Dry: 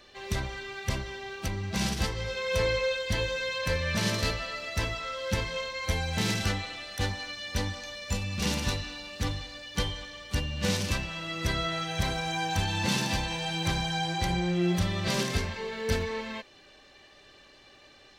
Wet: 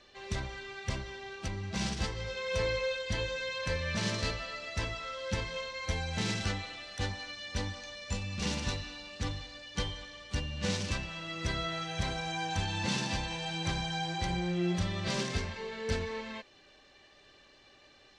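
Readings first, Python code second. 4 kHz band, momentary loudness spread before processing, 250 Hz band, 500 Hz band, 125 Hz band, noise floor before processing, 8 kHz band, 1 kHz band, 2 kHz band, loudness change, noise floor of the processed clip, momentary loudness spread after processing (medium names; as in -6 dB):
-4.5 dB, 8 LU, -4.5 dB, -4.5 dB, -4.5 dB, -56 dBFS, -5.0 dB, -4.5 dB, -4.5 dB, -4.5 dB, -60 dBFS, 8 LU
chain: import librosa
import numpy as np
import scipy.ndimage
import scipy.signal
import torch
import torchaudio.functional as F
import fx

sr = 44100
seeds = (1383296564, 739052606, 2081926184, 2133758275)

y = scipy.signal.sosfilt(scipy.signal.butter(4, 8400.0, 'lowpass', fs=sr, output='sos'), x)
y = y * 10.0 ** (-4.5 / 20.0)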